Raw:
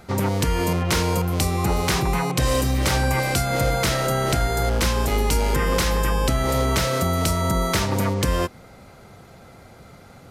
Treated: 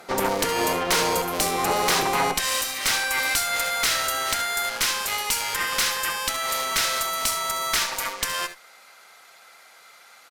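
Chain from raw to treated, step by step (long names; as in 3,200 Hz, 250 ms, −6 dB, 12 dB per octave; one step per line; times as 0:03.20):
high-pass filter 420 Hz 12 dB per octave, from 0:02.34 1,400 Hz
tube saturation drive 23 dB, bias 0.65
ambience of single reflections 65 ms −13 dB, 76 ms −13.5 dB
level +7.5 dB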